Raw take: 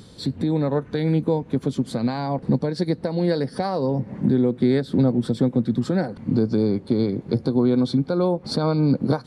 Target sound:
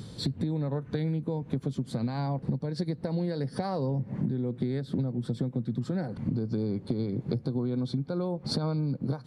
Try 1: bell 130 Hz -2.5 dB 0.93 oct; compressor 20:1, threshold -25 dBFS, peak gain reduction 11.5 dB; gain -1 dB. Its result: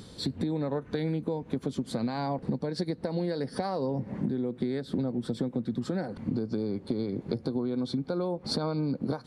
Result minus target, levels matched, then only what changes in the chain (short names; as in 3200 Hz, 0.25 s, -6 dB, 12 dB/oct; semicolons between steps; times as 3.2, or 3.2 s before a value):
125 Hz band -4.5 dB
change: bell 130 Hz +8.5 dB 0.93 oct